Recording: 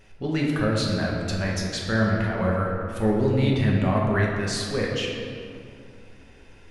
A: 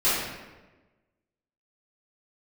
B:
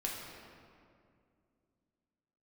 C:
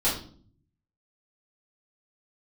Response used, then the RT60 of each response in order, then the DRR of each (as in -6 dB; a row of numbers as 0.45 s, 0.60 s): B; 1.2 s, 2.3 s, 0.50 s; -14.0 dB, -3.0 dB, -9.5 dB